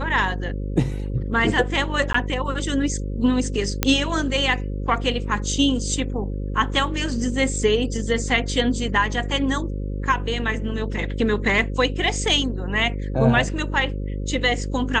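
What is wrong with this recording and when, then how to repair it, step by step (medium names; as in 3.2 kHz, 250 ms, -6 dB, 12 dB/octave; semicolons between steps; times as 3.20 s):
buzz 50 Hz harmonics 11 -27 dBFS
2.13–2.14 s: dropout 14 ms
3.83 s: pop -1 dBFS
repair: de-click; de-hum 50 Hz, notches 11; interpolate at 2.13 s, 14 ms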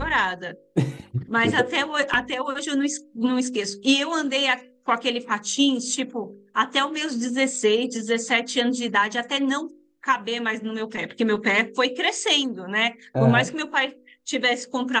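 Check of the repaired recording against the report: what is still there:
nothing left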